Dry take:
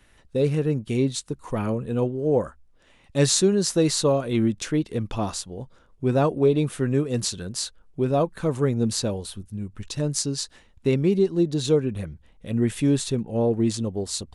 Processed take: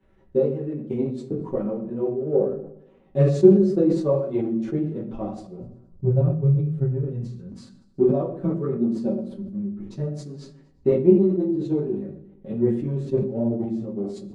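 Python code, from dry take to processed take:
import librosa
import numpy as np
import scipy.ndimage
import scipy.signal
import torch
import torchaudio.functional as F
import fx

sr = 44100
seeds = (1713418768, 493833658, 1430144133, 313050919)

y = fx.law_mismatch(x, sr, coded='mu')
y = y + 0.81 * np.pad(y, (int(5.3 * sr / 1000.0), 0))[:len(y)]
y = fx.transient(y, sr, attack_db=11, sustain_db=-4)
y = fx.chorus_voices(y, sr, voices=6, hz=1.4, base_ms=12, depth_ms=3.2, mix_pct=50)
y = fx.bandpass_q(y, sr, hz=fx.steps((0.0, 300.0), (5.62, 120.0), (7.52, 290.0)), q=1.2)
y = fx.echo_feedback(y, sr, ms=119, feedback_pct=58, wet_db=-21)
y = fx.room_shoebox(y, sr, seeds[0], volume_m3=51.0, walls='mixed', distance_m=0.61)
y = fx.sustainer(y, sr, db_per_s=74.0)
y = y * 10.0 ** (-4.0 / 20.0)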